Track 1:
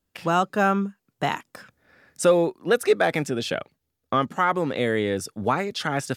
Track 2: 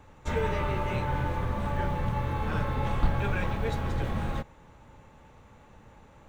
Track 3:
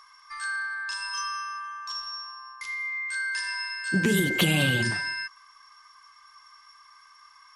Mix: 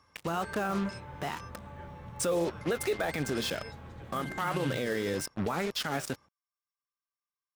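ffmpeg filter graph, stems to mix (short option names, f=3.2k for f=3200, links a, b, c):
-filter_complex "[0:a]flanger=delay=4.8:depth=9.2:regen=68:speed=1.9:shape=triangular,acrusher=bits=5:mix=0:aa=0.5,volume=1.5dB,asplit=2[a][b];[1:a]highpass=59,volume=-15dB[c];[2:a]equalizer=f=140:t=o:w=0.77:g=8,volume=-14.5dB[d];[b]apad=whole_len=333087[e];[d][e]sidechaingate=range=-33dB:threshold=-44dB:ratio=16:detection=peak[f];[a][c][f]amix=inputs=3:normalize=0,alimiter=limit=-21.5dB:level=0:latency=1:release=75"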